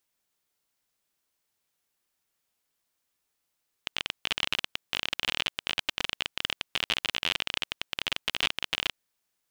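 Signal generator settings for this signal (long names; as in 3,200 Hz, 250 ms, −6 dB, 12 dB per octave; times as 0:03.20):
Geiger counter clicks 31 per second −10 dBFS 5.05 s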